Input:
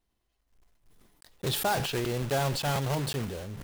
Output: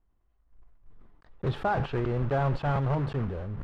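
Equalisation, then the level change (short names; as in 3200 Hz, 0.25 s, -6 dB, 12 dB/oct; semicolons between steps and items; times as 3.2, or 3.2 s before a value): LPF 1600 Hz 12 dB/oct; low shelf 90 Hz +11.5 dB; bell 1200 Hz +4 dB 0.57 oct; 0.0 dB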